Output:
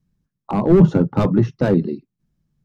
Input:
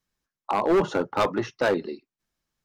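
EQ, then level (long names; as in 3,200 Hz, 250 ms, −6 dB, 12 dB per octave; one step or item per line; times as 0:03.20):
parametric band 160 Hz +12.5 dB 1.3 octaves
low-shelf EQ 210 Hz +8 dB
low-shelf EQ 450 Hz +11.5 dB
−5.0 dB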